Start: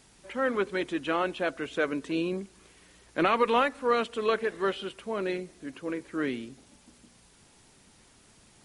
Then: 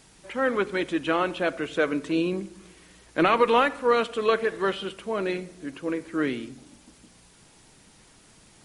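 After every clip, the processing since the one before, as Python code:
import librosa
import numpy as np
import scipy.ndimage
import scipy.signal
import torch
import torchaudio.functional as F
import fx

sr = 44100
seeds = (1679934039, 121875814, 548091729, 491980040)

y = fx.room_shoebox(x, sr, seeds[0], volume_m3=2900.0, walls='furnished', distance_m=0.58)
y = y * librosa.db_to_amplitude(3.5)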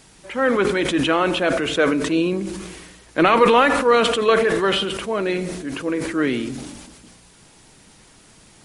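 y = fx.sustainer(x, sr, db_per_s=38.0)
y = y * librosa.db_to_amplitude(5.0)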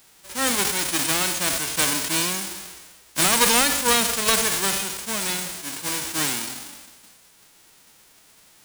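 y = fx.envelope_flatten(x, sr, power=0.1)
y = y * librosa.db_to_amplitude(-4.0)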